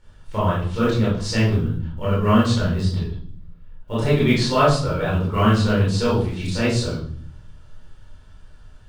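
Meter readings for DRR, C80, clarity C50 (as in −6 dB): −8.5 dB, 7.5 dB, 2.0 dB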